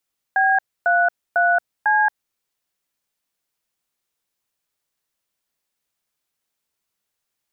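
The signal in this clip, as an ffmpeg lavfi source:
-f lavfi -i "aevalsrc='0.15*clip(min(mod(t,0.499),0.227-mod(t,0.499))/0.002,0,1)*(eq(floor(t/0.499),0)*(sin(2*PI*770*mod(t,0.499))+sin(2*PI*1633*mod(t,0.499)))+eq(floor(t/0.499),1)*(sin(2*PI*697*mod(t,0.499))+sin(2*PI*1477*mod(t,0.499)))+eq(floor(t/0.499),2)*(sin(2*PI*697*mod(t,0.499))+sin(2*PI*1477*mod(t,0.499)))+eq(floor(t/0.499),3)*(sin(2*PI*852*mod(t,0.499))+sin(2*PI*1633*mod(t,0.499))))':d=1.996:s=44100"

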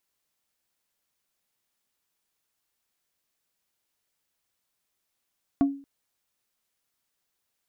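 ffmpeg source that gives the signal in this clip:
-f lavfi -i "aevalsrc='0.178*pow(10,-3*t/0.4)*sin(2*PI*278*t)+0.0562*pow(10,-3*t/0.133)*sin(2*PI*695*t)+0.0178*pow(10,-3*t/0.076)*sin(2*PI*1112*t)+0.00562*pow(10,-3*t/0.058)*sin(2*PI*1390*t)+0.00178*pow(10,-3*t/0.042)*sin(2*PI*1807*t)':d=0.23:s=44100"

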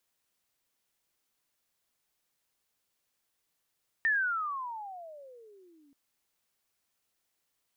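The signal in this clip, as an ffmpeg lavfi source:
-f lavfi -i "aevalsrc='pow(10,(-23-37*t/1.88)/20)*sin(2*PI*1830*1.88/(-33*log(2)/12)*(exp(-33*log(2)/12*t/1.88)-1))':d=1.88:s=44100"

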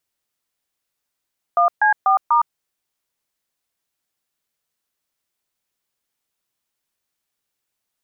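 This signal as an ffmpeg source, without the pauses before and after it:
-f lavfi -i "aevalsrc='0.188*clip(min(mod(t,0.245),0.112-mod(t,0.245))/0.002,0,1)*(eq(floor(t/0.245),0)*(sin(2*PI*697*mod(t,0.245))+sin(2*PI*1209*mod(t,0.245)))+eq(floor(t/0.245),1)*(sin(2*PI*852*mod(t,0.245))+sin(2*PI*1633*mod(t,0.245)))+eq(floor(t/0.245),2)*(sin(2*PI*770*mod(t,0.245))+sin(2*PI*1209*mod(t,0.245)))+eq(floor(t/0.245),3)*(sin(2*PI*941*mod(t,0.245))+sin(2*PI*1209*mod(t,0.245))))':d=0.98:s=44100"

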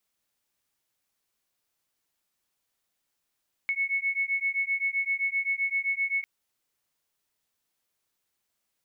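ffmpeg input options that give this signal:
-f lavfi -i "aevalsrc='0.0376*(sin(2*PI*2200*t)+sin(2*PI*2207.7*t))':d=2.55:s=44100"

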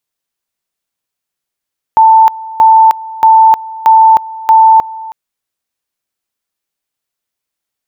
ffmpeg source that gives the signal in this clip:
-f lavfi -i "aevalsrc='pow(10,(-1.5-20*gte(mod(t,0.63),0.31))/20)*sin(2*PI*888*t)':d=3.15:s=44100"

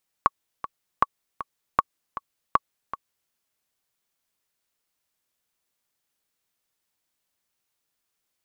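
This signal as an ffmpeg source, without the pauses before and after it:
-f lavfi -i "aevalsrc='pow(10,(-4-13.5*gte(mod(t,2*60/157),60/157))/20)*sin(2*PI*1120*mod(t,60/157))*exp(-6.91*mod(t,60/157)/0.03)':d=3.05:s=44100"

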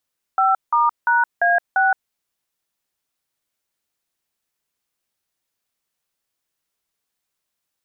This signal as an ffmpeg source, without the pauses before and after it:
-f lavfi -i "aevalsrc='0.158*clip(min(mod(t,0.345),0.169-mod(t,0.345))/0.002,0,1)*(eq(floor(t/0.345),0)*(sin(2*PI*770*mod(t,0.345))+sin(2*PI*1336*mod(t,0.345)))+eq(floor(t/0.345),1)*(sin(2*PI*941*mod(t,0.345))+sin(2*PI*1209*mod(t,0.345)))+eq(floor(t/0.345),2)*(sin(2*PI*941*mod(t,0.345))+sin(2*PI*1477*mod(t,0.345)))+eq(floor(t/0.345),3)*(sin(2*PI*697*mod(t,0.345))+sin(2*PI*1633*mod(t,0.345)))+eq(floor(t/0.345),4)*(sin(2*PI*770*mod(t,0.345))+sin(2*PI*1477*mod(t,0.345))))':d=1.725:s=44100"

